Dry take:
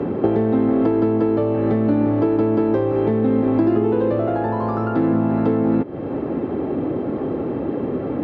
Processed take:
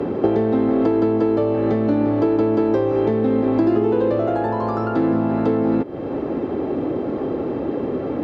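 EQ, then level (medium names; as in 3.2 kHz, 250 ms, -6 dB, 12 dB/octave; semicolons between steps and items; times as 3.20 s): tone controls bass -12 dB, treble +11 dB; bass shelf 92 Hz +8.5 dB; bass shelf 310 Hz +6 dB; 0.0 dB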